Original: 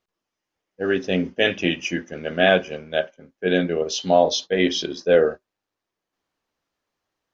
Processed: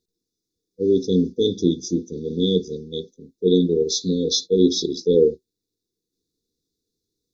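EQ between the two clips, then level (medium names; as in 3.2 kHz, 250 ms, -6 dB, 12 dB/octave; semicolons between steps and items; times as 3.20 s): brick-wall FIR band-stop 500–3300 Hz; band-stop 3.3 kHz, Q 12; +4.5 dB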